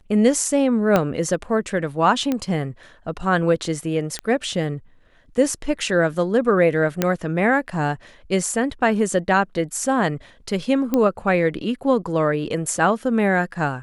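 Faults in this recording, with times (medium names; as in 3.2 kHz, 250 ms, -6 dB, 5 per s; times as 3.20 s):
0.96 s: pop -5 dBFS
2.32 s: pop -10 dBFS
4.19 s: pop -12 dBFS
7.02 s: pop -4 dBFS
10.94 s: pop -8 dBFS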